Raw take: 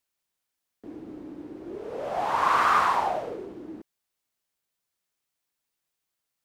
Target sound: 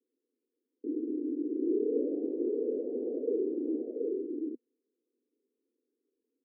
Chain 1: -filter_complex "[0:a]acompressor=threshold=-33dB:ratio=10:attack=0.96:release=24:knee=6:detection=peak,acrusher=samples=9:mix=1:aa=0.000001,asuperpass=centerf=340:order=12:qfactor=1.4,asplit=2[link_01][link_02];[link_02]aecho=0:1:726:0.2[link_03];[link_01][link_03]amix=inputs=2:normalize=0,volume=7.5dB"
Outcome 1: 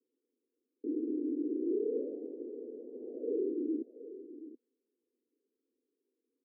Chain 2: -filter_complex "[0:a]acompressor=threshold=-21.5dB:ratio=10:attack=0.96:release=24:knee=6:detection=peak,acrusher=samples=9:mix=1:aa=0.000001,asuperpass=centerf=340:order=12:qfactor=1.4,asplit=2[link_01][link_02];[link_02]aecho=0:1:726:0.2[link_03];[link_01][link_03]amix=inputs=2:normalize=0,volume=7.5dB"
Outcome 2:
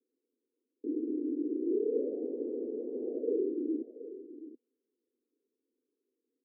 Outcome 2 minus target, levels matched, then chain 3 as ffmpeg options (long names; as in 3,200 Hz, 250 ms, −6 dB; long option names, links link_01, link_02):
echo-to-direct −11.5 dB
-filter_complex "[0:a]acompressor=threshold=-21.5dB:ratio=10:attack=0.96:release=24:knee=6:detection=peak,acrusher=samples=9:mix=1:aa=0.000001,asuperpass=centerf=340:order=12:qfactor=1.4,asplit=2[link_01][link_02];[link_02]aecho=0:1:726:0.75[link_03];[link_01][link_03]amix=inputs=2:normalize=0,volume=7.5dB"